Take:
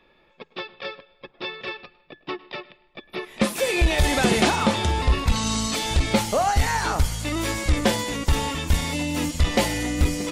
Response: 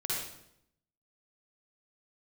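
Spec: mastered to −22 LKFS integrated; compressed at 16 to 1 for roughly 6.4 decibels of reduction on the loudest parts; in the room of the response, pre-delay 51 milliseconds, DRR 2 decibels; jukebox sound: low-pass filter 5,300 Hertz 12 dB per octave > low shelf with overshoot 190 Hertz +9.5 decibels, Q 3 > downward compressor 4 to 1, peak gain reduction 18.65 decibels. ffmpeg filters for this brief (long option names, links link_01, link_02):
-filter_complex "[0:a]acompressor=threshold=-20dB:ratio=16,asplit=2[link_01][link_02];[1:a]atrim=start_sample=2205,adelay=51[link_03];[link_02][link_03]afir=irnorm=-1:irlink=0,volume=-7dB[link_04];[link_01][link_04]amix=inputs=2:normalize=0,lowpass=5300,lowshelf=frequency=190:width_type=q:width=3:gain=9.5,acompressor=threshold=-30dB:ratio=4,volume=11dB"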